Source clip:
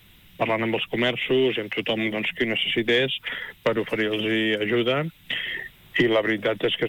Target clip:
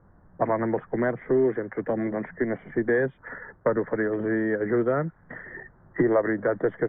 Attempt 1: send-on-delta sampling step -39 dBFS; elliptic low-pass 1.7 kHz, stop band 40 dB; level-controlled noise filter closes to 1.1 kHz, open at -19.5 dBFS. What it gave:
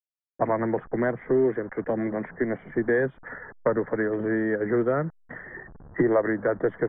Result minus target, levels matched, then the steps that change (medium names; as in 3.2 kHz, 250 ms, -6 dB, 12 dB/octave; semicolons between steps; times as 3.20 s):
send-on-delta sampling: distortion +13 dB
change: send-on-delta sampling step -50 dBFS